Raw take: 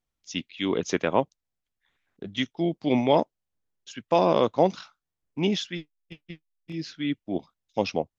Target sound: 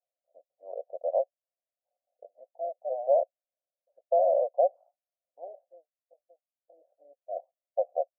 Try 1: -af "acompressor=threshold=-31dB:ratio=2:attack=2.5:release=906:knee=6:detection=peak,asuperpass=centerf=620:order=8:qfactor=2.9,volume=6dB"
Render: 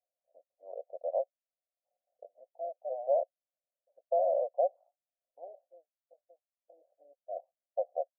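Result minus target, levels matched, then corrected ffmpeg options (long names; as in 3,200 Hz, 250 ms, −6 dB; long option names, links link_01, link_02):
downward compressor: peak gain reduction +5 dB
-af "acompressor=threshold=-21.5dB:ratio=2:attack=2.5:release=906:knee=6:detection=peak,asuperpass=centerf=620:order=8:qfactor=2.9,volume=6dB"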